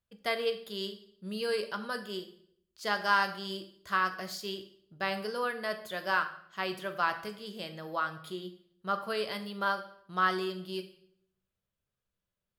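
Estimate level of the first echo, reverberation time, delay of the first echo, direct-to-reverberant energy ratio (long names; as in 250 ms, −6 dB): no echo audible, 0.65 s, no echo audible, 6.5 dB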